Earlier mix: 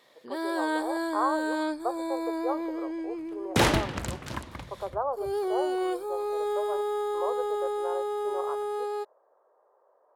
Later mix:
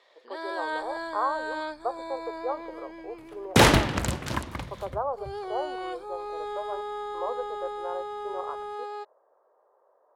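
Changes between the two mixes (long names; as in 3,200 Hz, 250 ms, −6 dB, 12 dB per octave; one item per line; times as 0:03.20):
first sound: add band-pass filter 610–5,100 Hz
second sound +5.5 dB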